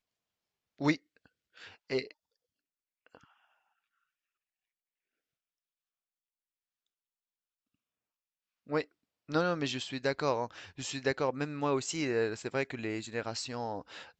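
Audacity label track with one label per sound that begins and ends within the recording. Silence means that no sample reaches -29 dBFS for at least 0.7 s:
0.820000	0.950000	sound
1.910000	2.010000	sound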